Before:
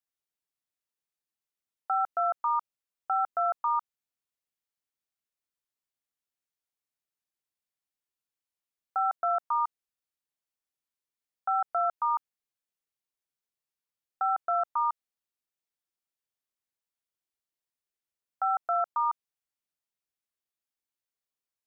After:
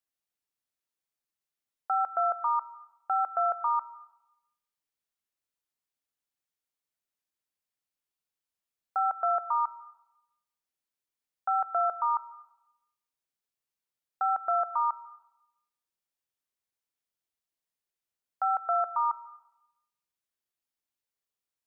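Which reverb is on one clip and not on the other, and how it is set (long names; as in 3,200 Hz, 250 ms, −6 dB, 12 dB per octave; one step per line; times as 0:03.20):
comb and all-pass reverb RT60 0.85 s, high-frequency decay 0.95×, pre-delay 95 ms, DRR 16.5 dB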